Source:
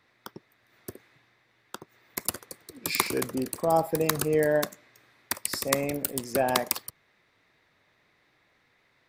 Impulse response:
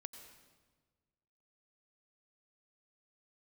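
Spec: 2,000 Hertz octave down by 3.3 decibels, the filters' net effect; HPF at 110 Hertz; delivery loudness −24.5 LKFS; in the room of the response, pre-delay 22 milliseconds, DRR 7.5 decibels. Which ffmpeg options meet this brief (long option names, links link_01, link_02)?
-filter_complex "[0:a]highpass=110,equalizer=frequency=2000:width_type=o:gain=-4,asplit=2[link_01][link_02];[1:a]atrim=start_sample=2205,adelay=22[link_03];[link_02][link_03]afir=irnorm=-1:irlink=0,volume=-2.5dB[link_04];[link_01][link_04]amix=inputs=2:normalize=0,volume=3dB"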